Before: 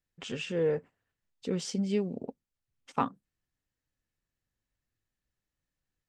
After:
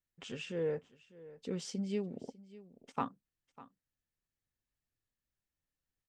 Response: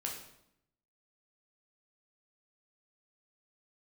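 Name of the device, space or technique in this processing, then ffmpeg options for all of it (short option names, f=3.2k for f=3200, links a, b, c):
ducked delay: -filter_complex "[0:a]asplit=3[a][b][c];[b]adelay=599,volume=-8dB[d];[c]apad=whole_len=294787[e];[d][e]sidechaincompress=threshold=-40dB:ratio=8:attack=28:release=1450[f];[a][f]amix=inputs=2:normalize=0,volume=-6.5dB"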